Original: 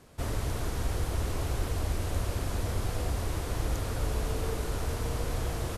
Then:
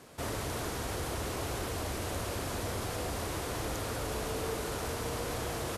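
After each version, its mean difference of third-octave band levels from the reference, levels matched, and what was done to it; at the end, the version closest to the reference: 3.0 dB: HPF 230 Hz 6 dB/oct; in parallel at +2.5 dB: limiter -35 dBFS, peak gain reduction 10.5 dB; on the sum: gain -2.5 dB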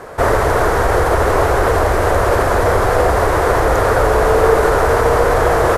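7.0 dB: in parallel at +1 dB: limiter -27 dBFS, peak gain reduction 9 dB; on the sum: band shelf 860 Hz +14.5 dB 2.7 oct; gain +7 dB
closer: first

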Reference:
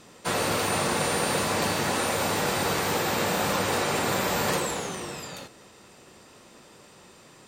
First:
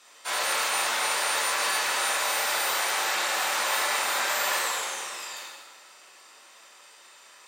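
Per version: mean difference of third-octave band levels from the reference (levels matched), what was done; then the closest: 9.0 dB: HPF 1000 Hz 12 dB/oct; plate-style reverb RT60 1.4 s, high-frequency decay 0.85×, DRR -4.5 dB; gain -2.5 dB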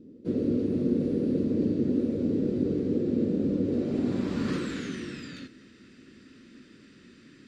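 14.5 dB: EQ curve 170 Hz 0 dB, 260 Hz +11 dB, 840 Hz -28 dB, 1400 Hz -11 dB, 4600 Hz +14 dB; low-pass sweep 490 Hz -> 1600 Hz, 3.62–4.82; gain -1 dB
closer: first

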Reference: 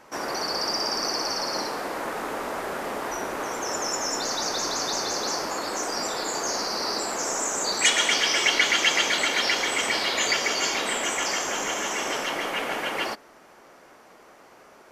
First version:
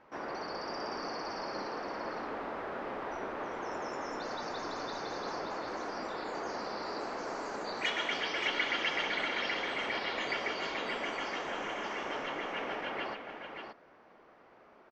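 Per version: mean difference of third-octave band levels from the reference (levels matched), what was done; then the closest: 7.0 dB: air absorption 290 m; on a send: echo 0.577 s -6.5 dB; on the sum: gain -7.5 dB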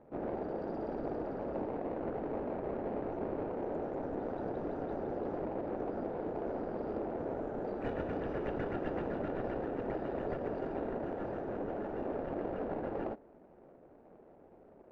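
16.0 dB: median filter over 41 samples; LPF 1100 Hz 12 dB/oct; gain -1 dB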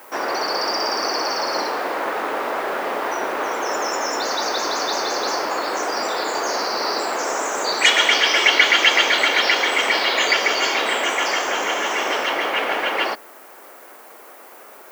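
4.5 dB: three-band isolator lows -17 dB, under 280 Hz, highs -14 dB, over 4600 Hz; added noise violet -55 dBFS; gain +7.5 dB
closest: third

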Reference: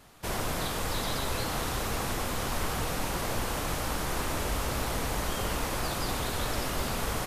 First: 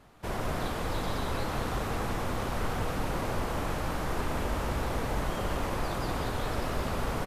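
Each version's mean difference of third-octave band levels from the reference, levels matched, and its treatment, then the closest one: 4.0 dB: high shelf 3000 Hz -12 dB; on a send: echo 0.186 s -5.5 dB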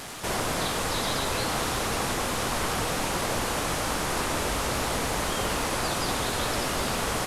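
2.0 dB: delta modulation 64 kbps, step -37 dBFS; low shelf 100 Hz -9 dB; gain +5 dB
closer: second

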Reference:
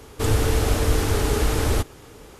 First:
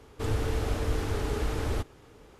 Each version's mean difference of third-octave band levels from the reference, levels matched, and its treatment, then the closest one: 2.0 dB: high shelf 6000 Hz -10.5 dB; gain -8.5 dB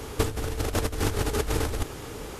6.5 dB: negative-ratio compressor -25 dBFS, ratio -0.5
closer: first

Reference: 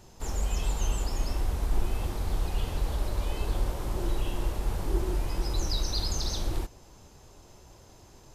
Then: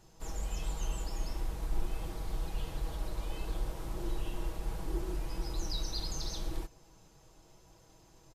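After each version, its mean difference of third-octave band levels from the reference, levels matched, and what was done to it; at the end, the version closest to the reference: 1.0 dB: comb 6.2 ms, depth 53%; gain -8 dB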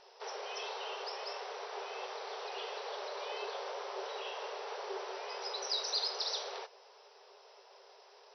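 17.5 dB: FFT band-pass 380–6000 Hz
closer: first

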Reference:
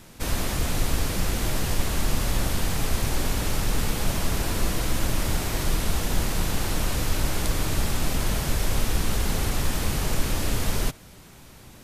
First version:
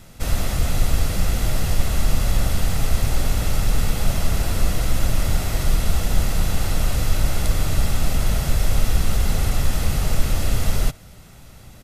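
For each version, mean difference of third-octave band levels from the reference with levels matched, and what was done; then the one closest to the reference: 2.0 dB: low shelf 200 Hz +4.5 dB; comb 1.5 ms, depth 34%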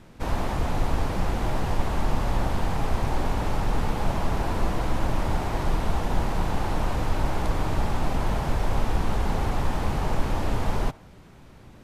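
5.5 dB: LPF 1500 Hz 6 dB/oct; dynamic EQ 860 Hz, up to +8 dB, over -53 dBFS, Q 1.7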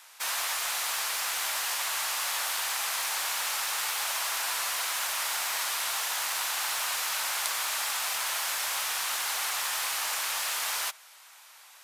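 13.0 dB: HPF 860 Hz 24 dB/oct; in parallel at -10.5 dB: bit-crush 6-bit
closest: first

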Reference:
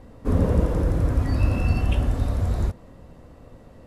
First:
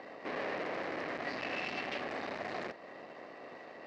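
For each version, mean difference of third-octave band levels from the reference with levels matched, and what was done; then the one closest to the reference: 11.0 dB: spectral limiter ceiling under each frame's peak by 13 dB; in parallel at -2 dB: compressor, threshold -32 dBFS, peak gain reduction 17 dB; on the sum: tube stage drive 31 dB, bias 0.65; speaker cabinet 480–4500 Hz, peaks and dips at 490 Hz -4 dB, 940 Hz -6 dB, 1400 Hz -6 dB, 1900 Hz +5 dB, 3400 Hz -7 dB; gain +1.5 dB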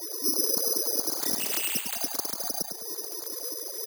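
16.0 dB: sine-wave speech; compressor 3:1, threshold -37 dBFS, peak gain reduction 18.5 dB; feedback echo 0.103 s, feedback 44%, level -7 dB; careless resampling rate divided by 8×, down filtered, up zero stuff; gain -3.5 dB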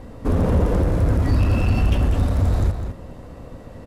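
2.5 dB: tracing distortion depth 0.035 ms; in parallel at -1 dB: compressor, threshold -27 dBFS, peak gain reduction 13 dB; on the sum: hard clip -16.5 dBFS, distortion -11 dB; outdoor echo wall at 35 m, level -7 dB; gain +2 dB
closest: third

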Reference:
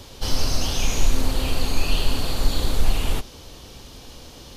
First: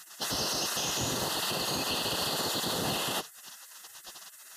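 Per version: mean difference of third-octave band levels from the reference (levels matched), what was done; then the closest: 7.0 dB: spectral gate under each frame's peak -25 dB weak; limiter -26.5 dBFS, peak gain reduction 10 dB; Butterworth band-stop 2300 Hz, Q 4.4; gain +5 dB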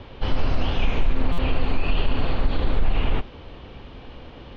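10.0 dB: LPF 2800 Hz 24 dB/oct; limiter -13 dBFS, peak gain reduction 7 dB; stuck buffer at 1.32, samples 256, times 9; gain +2.5 dB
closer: first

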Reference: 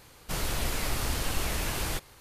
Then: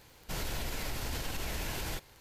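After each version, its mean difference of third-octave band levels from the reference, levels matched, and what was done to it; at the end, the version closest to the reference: 1.5 dB: bell 9500 Hz -6 dB 0.37 oct; notch 1200 Hz, Q 8.4; limiter -23 dBFS, peak gain reduction 7 dB; crackle 45/s -40 dBFS; gain -3.5 dB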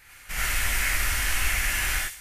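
7.5 dB: graphic EQ 125/250/500/1000/2000/4000 Hz -10/-12/-11/-7/+12/-7 dB; thin delay 64 ms, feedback 45%, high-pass 4300 Hz, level -5 dB; non-linear reverb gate 0.12 s rising, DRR -5 dB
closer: first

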